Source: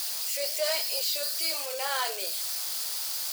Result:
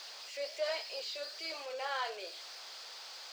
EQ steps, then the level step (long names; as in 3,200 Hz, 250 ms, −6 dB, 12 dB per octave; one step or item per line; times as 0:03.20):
high-frequency loss of the air 180 metres
−4.5 dB